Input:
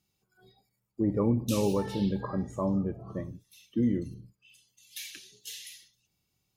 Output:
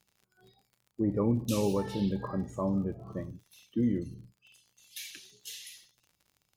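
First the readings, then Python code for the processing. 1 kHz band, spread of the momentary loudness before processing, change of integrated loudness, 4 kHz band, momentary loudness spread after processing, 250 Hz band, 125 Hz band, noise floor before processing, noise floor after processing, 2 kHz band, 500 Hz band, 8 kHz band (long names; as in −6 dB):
−1.5 dB, 17 LU, −1.5 dB, −1.5 dB, 17 LU, −1.5 dB, −1.5 dB, −79 dBFS, −79 dBFS, −1.5 dB, −1.5 dB, −1.5 dB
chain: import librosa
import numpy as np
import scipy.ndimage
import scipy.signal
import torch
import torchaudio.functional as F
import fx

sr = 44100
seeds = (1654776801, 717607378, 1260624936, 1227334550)

y = fx.dmg_crackle(x, sr, seeds[0], per_s=48.0, level_db=-47.0)
y = y * librosa.db_to_amplitude(-1.5)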